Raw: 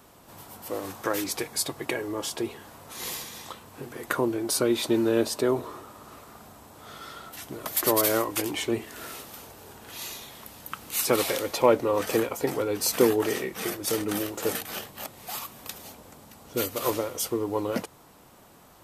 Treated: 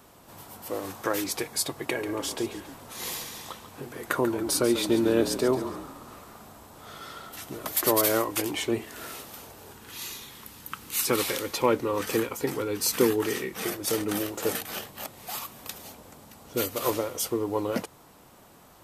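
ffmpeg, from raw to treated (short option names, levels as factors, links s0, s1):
-filter_complex "[0:a]asettb=1/sr,asplit=3[s0][s1][s2];[s0]atrim=end=1.834[s3];[s1]atrim=start=1.83:end=7.72,asetpts=PTS-STARTPTS,afade=t=in:d=0.004:c=qsin,afade=t=out:st=5.886:d=0.004:c=qsin,asplit=6[s4][s5][s6][s7][s8][s9];[s5]adelay=140,afreqshift=-36,volume=0.282[s10];[s6]adelay=280,afreqshift=-72,volume=0.124[s11];[s7]adelay=420,afreqshift=-108,volume=0.0543[s12];[s8]adelay=560,afreqshift=-144,volume=0.024[s13];[s9]adelay=700,afreqshift=-180,volume=0.0106[s14];[s4][s10][s11][s12][s13][s14]amix=inputs=6:normalize=0,atrim=end_sample=259749[s15];[s2]atrim=start=7.716[s16];[s3][s15]acrossfade=d=0.004:c1=hsin:c2=qsin[s17];[s17][s16]acrossfade=d=0.004:c1=qsin:c2=hsin,asettb=1/sr,asplit=3[s18][s19][s20];[s18]atrim=end=9.734[s21];[s19]atrim=start=9.73:end=13.53,asetpts=PTS-STARTPTS,afade=t=in:d=0.004:c=qsin,afade=t=out:st=3.796:d=0.004:c=qsin,equalizer=f=650:t=o:w=0.57:g=-10[s22];[s20]atrim=start=13.526[s23];[s21][s22]acrossfade=d=0.004:c1=hsin:c2=qsin[s24];[s24][s23]acrossfade=d=0.004:c1=qsin:c2=hsin"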